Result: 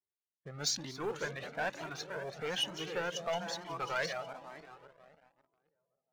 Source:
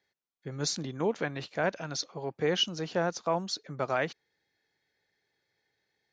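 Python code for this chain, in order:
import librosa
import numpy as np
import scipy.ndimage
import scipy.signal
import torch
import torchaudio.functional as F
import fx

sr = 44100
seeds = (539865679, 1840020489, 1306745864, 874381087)

y = fx.reverse_delay_fb(x, sr, ms=271, feedback_pct=62, wet_db=-10.0)
y = fx.env_lowpass(y, sr, base_hz=620.0, full_db=-26.0)
y = fx.peak_eq(y, sr, hz=4900.0, db=-10.5, octaves=0.62, at=(0.99, 3.61))
y = fx.echo_bbd(y, sr, ms=202, stages=1024, feedback_pct=56, wet_db=-12)
y = fx.leveller(y, sr, passes=2)
y = fx.tilt_shelf(y, sr, db=-5.0, hz=780.0)
y = fx.comb_cascade(y, sr, direction='rising', hz=1.1)
y = F.gain(torch.from_numpy(y), -7.0).numpy()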